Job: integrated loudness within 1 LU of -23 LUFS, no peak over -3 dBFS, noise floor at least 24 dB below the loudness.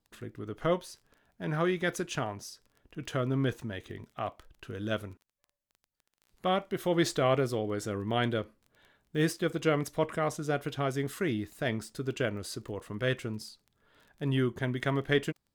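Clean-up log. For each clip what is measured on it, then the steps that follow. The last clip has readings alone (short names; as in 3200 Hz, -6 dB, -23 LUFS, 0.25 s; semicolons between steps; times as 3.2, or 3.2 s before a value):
ticks 17/s; loudness -32.0 LUFS; peak -13.0 dBFS; loudness target -23.0 LUFS
-> de-click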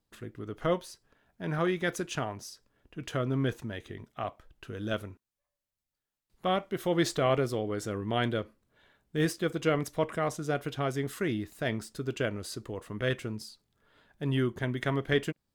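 ticks 0.064/s; loudness -32.0 LUFS; peak -13.0 dBFS; loudness target -23.0 LUFS
-> gain +9 dB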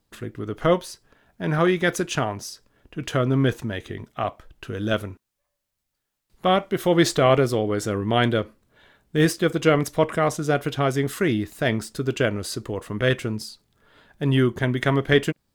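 loudness -23.0 LUFS; peak -4.0 dBFS; noise floor -80 dBFS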